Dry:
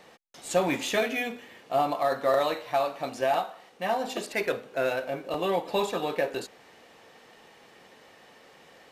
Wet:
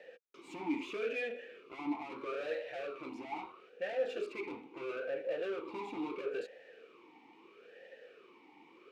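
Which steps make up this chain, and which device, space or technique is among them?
talk box (tube stage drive 36 dB, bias 0.6; vowel sweep e-u 0.76 Hz); gain +10.5 dB

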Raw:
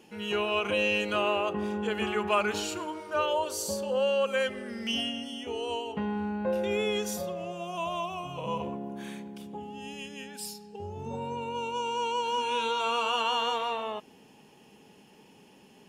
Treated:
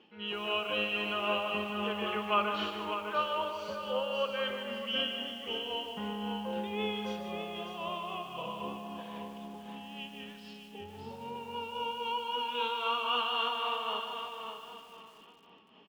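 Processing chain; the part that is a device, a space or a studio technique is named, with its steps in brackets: feedback echo 0.602 s, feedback 30%, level -6.5 dB; combo amplifier with spring reverb and tremolo (spring tank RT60 2.1 s, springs 33/37/58 ms, chirp 55 ms, DRR 8.5 dB; tremolo 3.8 Hz, depth 50%; speaker cabinet 87–4000 Hz, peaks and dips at 130 Hz -8 dB, 1200 Hz +7 dB, 3100 Hz +8 dB); lo-fi delay 0.15 s, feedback 35%, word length 8-bit, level -7.5 dB; gain -6 dB

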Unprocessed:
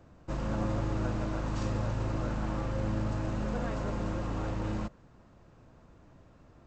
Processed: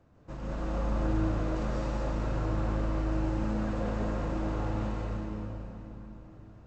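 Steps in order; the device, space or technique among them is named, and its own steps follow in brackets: swimming-pool hall (reverb RT60 3.5 s, pre-delay 0.12 s, DRR -6.5 dB; high shelf 4800 Hz -5 dB); gain -6.5 dB

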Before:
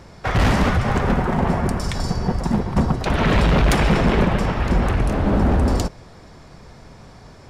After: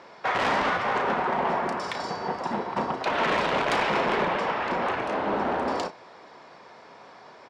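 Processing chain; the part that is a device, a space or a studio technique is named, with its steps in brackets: intercom (BPF 460–3800 Hz; bell 970 Hz +4 dB 0.25 oct; soft clip -18 dBFS, distortion -15 dB; doubler 34 ms -10 dB)

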